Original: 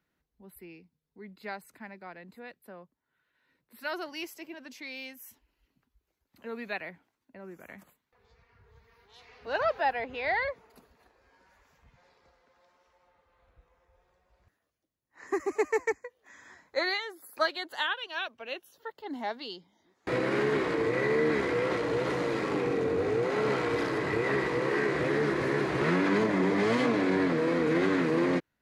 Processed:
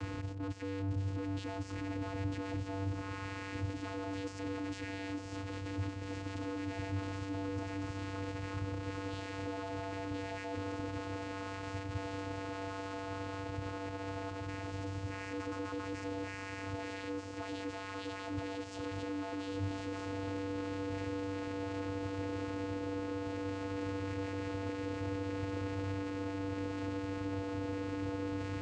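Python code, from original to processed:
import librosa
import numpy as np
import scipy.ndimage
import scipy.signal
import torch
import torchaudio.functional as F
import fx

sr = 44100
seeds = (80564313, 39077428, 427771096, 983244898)

y = np.sign(x) * np.sqrt(np.mean(np.square(x)))
y = fx.echo_diffused(y, sr, ms=1306, feedback_pct=68, wet_db=-8.5)
y = fx.vocoder(y, sr, bands=8, carrier='square', carrier_hz=97.2)
y = y * librosa.db_to_amplitude(-6.5)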